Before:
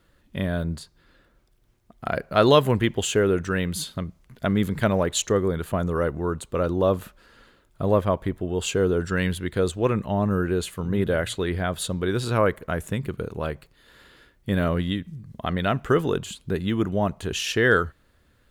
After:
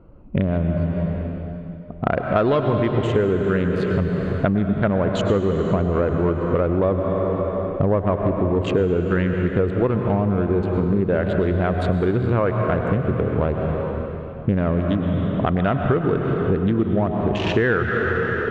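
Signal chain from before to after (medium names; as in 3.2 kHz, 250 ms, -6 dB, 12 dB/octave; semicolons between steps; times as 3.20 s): local Wiener filter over 25 samples; in parallel at -4.5 dB: sine folder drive 5 dB, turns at -4.5 dBFS; on the sum: low-pass 2 kHz 12 dB/octave; reverberation RT60 2.9 s, pre-delay 93 ms, DRR 5 dB; compression 6:1, threshold -24 dBFS, peak gain reduction 17 dB; trim +7 dB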